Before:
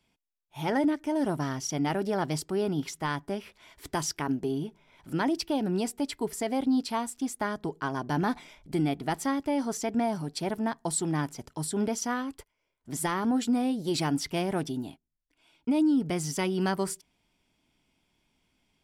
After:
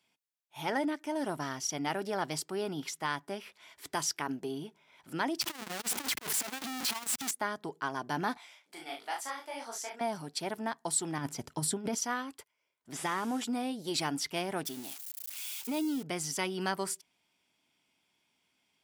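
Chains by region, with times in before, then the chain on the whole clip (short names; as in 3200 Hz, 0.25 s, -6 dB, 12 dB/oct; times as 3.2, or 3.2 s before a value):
5.41–7.31 infinite clipping + bell 440 Hz -5.5 dB 1.1 oct + core saturation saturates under 180 Hz
8.37–10.01 HPF 620 Hz + doubler 39 ms -4.5 dB + detuned doubles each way 55 cents
11.18–11.95 low shelf 280 Hz +11 dB + negative-ratio compressor -25 dBFS, ratio -0.5
12.93–13.44 delta modulation 64 kbps, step -41.5 dBFS + notch 4200 Hz, Q 9.4
14.65–16.03 switching spikes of -31 dBFS + HPF 190 Hz 6 dB/oct
whole clip: HPF 110 Hz; low shelf 490 Hz -10.5 dB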